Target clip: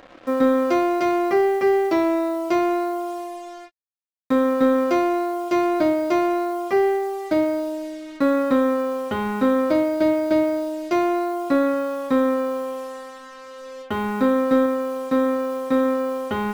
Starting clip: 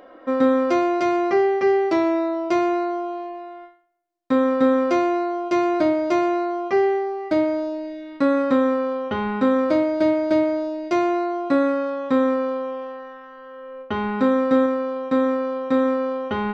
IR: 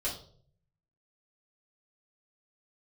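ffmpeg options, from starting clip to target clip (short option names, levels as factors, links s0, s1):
-af "aeval=exprs='0.447*(cos(1*acos(clip(val(0)/0.447,-1,1)))-cos(1*PI/2))+0.00891*(cos(2*acos(clip(val(0)/0.447,-1,1)))-cos(2*PI/2))+0.00891*(cos(3*acos(clip(val(0)/0.447,-1,1)))-cos(3*PI/2))+0.01*(cos(5*acos(clip(val(0)/0.447,-1,1)))-cos(5*PI/2))+0.00501*(cos(7*acos(clip(val(0)/0.447,-1,1)))-cos(7*PI/2))':c=same,acrusher=bits=6:mix=0:aa=0.5"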